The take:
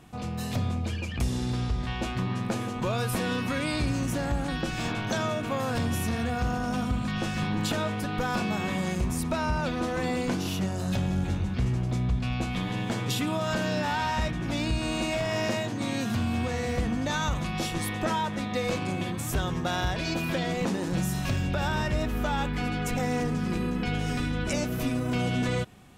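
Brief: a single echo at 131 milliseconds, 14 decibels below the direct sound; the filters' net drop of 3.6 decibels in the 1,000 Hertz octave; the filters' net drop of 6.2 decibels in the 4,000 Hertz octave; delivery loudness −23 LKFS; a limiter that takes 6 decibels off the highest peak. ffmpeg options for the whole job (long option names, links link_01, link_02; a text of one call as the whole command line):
ffmpeg -i in.wav -af "equalizer=frequency=1000:width_type=o:gain=-4.5,equalizer=frequency=4000:width_type=o:gain=-8,alimiter=limit=-24dB:level=0:latency=1,aecho=1:1:131:0.2,volume=9.5dB" out.wav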